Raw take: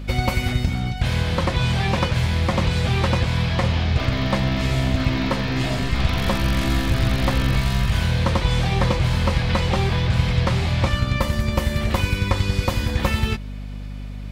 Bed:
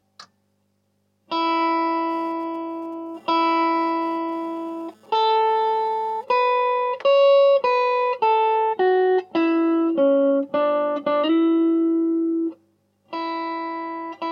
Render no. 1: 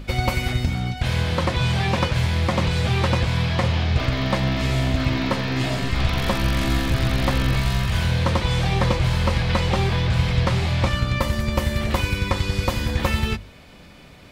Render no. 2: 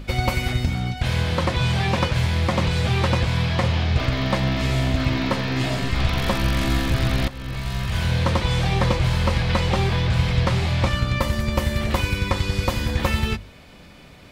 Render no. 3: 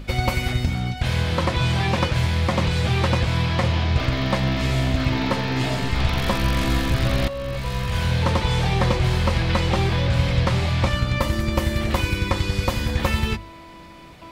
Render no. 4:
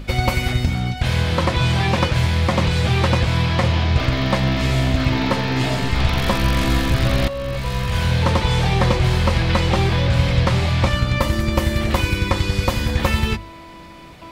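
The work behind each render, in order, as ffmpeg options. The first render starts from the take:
-af "bandreject=f=50:t=h:w=6,bandreject=f=100:t=h:w=6,bandreject=f=150:t=h:w=6,bandreject=f=200:t=h:w=6,bandreject=f=250:t=h:w=6"
-filter_complex "[0:a]asplit=2[s0][s1];[s0]atrim=end=7.28,asetpts=PTS-STARTPTS,afade=t=out:st=7.276:d=0.004:c=hsin:silence=0.11885[s2];[s1]atrim=start=7.28,asetpts=PTS-STARTPTS,afade=t=in:d=0.87:silence=0.11885[s3];[s2][s3]concat=n=2:v=0:a=1"
-filter_complex "[1:a]volume=0.15[s0];[0:a][s0]amix=inputs=2:normalize=0"
-af "volume=1.41"

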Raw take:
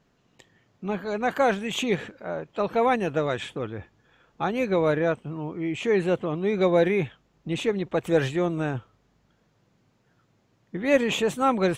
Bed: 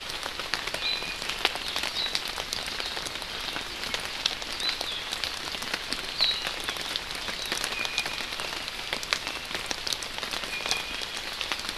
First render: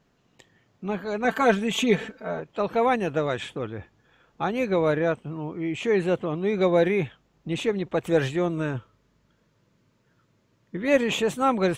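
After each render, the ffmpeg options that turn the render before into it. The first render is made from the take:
-filter_complex "[0:a]asettb=1/sr,asplit=3[s0][s1][s2];[s0]atrim=end=1.244[s3];[s1]atrim=start=1.24:end=2.4,asetpts=PTS-STARTPTS,afade=t=in:d=0.004:c=qsin,afade=t=out:st=1.156:d=0.004:c=qsin,aecho=1:1:4.5:0.87,atrim=end_sample=51156[s4];[s2]atrim=start=2.396[s5];[s3][s4]acrossfade=d=0.004:c1=hsin:c2=qsin[s6];[s6][s5]acrossfade=d=0.004:c1=qsin:c2=hsin,asettb=1/sr,asplit=3[s7][s8][s9];[s7]atrim=end=8.494[s10];[s8]atrim=start=8.49:end=10.88,asetpts=PTS-STARTPTS,afade=t=in:d=0.004:c=qsin,afade=t=out:st=2.386:d=0.004:c=qsin,asuperstop=centerf=760:order=4:qfactor=5[s11];[s9]atrim=start=10.876[s12];[s10][s11]acrossfade=d=0.004:c1=hsin:c2=qsin[s13];[s13][s12]acrossfade=d=0.004:c1=qsin:c2=hsin"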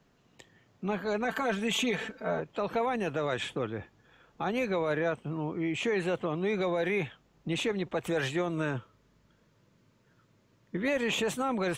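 -filter_complex "[0:a]acrossover=split=120|590[s0][s1][s2];[s0]acompressor=threshold=0.00355:ratio=4[s3];[s1]acompressor=threshold=0.0316:ratio=4[s4];[s2]acompressor=threshold=0.0562:ratio=4[s5];[s3][s4][s5]amix=inputs=3:normalize=0,alimiter=limit=0.0891:level=0:latency=1:release=14"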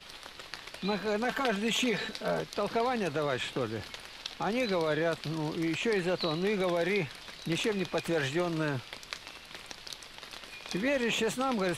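-filter_complex "[1:a]volume=0.224[s0];[0:a][s0]amix=inputs=2:normalize=0"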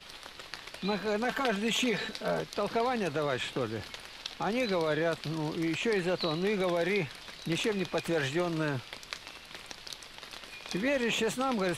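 -af anull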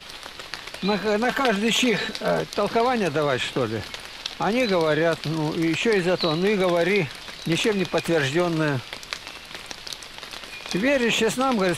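-af "volume=2.66"

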